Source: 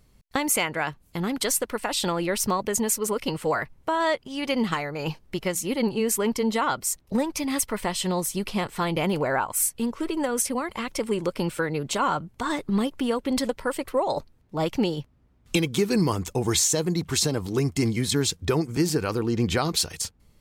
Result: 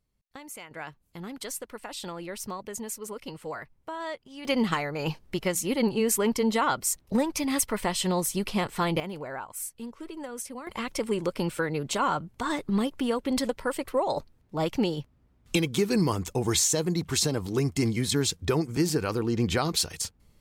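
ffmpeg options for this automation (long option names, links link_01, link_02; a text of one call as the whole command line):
ffmpeg -i in.wav -af "asetnsamples=nb_out_samples=441:pad=0,asendcmd='0.71 volume volume -11.5dB;4.45 volume volume -0.5dB;9 volume volume -12dB;10.67 volume volume -2dB',volume=-19dB" out.wav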